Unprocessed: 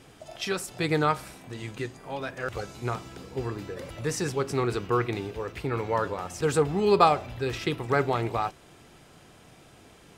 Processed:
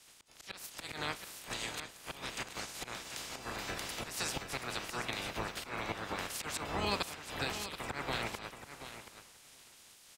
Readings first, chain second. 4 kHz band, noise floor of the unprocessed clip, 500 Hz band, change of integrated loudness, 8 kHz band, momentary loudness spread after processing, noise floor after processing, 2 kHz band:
−1.0 dB, −54 dBFS, −17.0 dB, −10.5 dB, −2.0 dB, 15 LU, −59 dBFS, −5.0 dB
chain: ceiling on every frequency bin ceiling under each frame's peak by 26 dB
volume swells 320 ms
downward compressor 5 to 1, threshold −37 dBFS, peak gain reduction 19 dB
repeating echo 729 ms, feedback 22%, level −7 dB
multiband upward and downward expander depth 70%
level +1 dB

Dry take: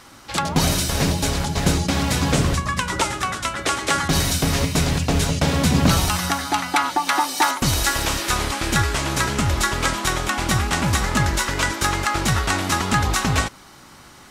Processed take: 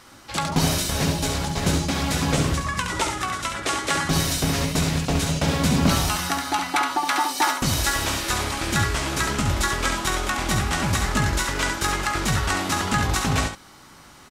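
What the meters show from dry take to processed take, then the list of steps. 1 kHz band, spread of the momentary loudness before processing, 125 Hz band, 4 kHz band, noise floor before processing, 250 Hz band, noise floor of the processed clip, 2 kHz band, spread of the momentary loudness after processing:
−2.5 dB, 4 LU, −3.0 dB, −2.0 dB, −46 dBFS, −2.0 dB, −48 dBFS, −2.0 dB, 4 LU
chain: ambience of single reflections 19 ms −10.5 dB, 69 ms −6 dB
level −3.5 dB

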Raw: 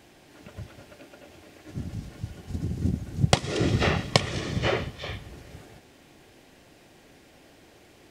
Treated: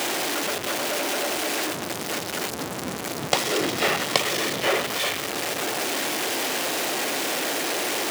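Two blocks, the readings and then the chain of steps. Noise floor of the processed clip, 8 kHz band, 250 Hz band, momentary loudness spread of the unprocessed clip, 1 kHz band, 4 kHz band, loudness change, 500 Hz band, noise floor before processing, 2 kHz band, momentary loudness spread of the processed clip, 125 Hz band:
−32 dBFS, +14.5 dB, +1.5 dB, 21 LU, +8.0 dB, +8.5 dB, +3.5 dB, +6.5 dB, −55 dBFS, +9.5 dB, 6 LU, −11.5 dB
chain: converter with a step at zero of −18 dBFS
high-pass filter 360 Hz 12 dB per octave
level −1 dB

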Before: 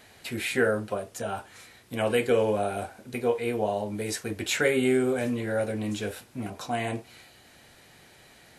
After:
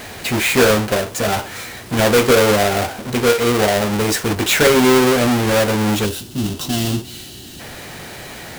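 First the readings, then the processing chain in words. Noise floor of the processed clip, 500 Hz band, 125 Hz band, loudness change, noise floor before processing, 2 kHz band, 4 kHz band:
−36 dBFS, +10.5 dB, +14.0 dB, +12.5 dB, −55 dBFS, +12.5 dB, +16.5 dB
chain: each half-wave held at its own peak
power curve on the samples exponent 0.7
gain on a spectral selection 0:06.06–0:07.60, 430–2,600 Hz −12 dB
level +5 dB

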